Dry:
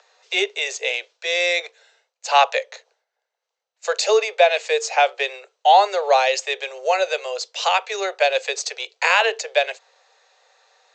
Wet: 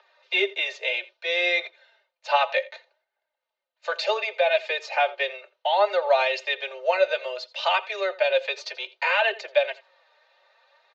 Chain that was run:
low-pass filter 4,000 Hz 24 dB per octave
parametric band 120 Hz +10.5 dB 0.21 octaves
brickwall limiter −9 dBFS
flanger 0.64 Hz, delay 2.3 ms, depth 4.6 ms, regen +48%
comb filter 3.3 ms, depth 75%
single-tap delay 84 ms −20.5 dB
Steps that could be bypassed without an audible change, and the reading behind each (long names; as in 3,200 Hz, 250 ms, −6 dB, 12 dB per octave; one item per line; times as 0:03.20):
parametric band 120 Hz: nothing at its input below 360 Hz